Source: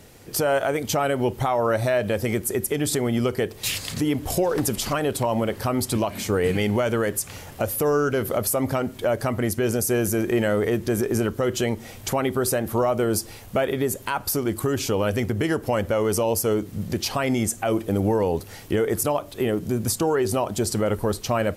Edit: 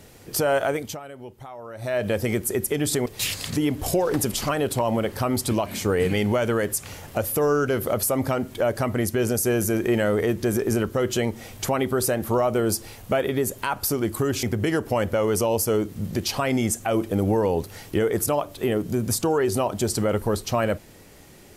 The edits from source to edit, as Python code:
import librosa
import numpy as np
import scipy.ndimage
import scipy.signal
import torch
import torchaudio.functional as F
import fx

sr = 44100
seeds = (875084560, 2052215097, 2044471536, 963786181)

y = fx.edit(x, sr, fx.fade_down_up(start_s=0.69, length_s=1.37, db=-17.0, fade_s=0.31),
    fx.cut(start_s=3.06, length_s=0.44),
    fx.cut(start_s=14.87, length_s=0.33), tone=tone)